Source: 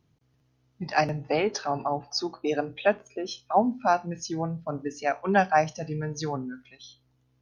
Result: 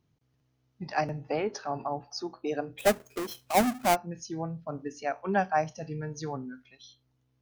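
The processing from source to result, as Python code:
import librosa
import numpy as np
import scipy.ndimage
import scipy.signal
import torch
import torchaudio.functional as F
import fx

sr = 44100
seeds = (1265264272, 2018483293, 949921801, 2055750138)

y = fx.halfwave_hold(x, sr, at=(2.78, 3.94), fade=0.02)
y = fx.dynamic_eq(y, sr, hz=3700.0, q=0.92, threshold_db=-41.0, ratio=4.0, max_db=-6)
y = F.gain(torch.from_numpy(y), -4.5).numpy()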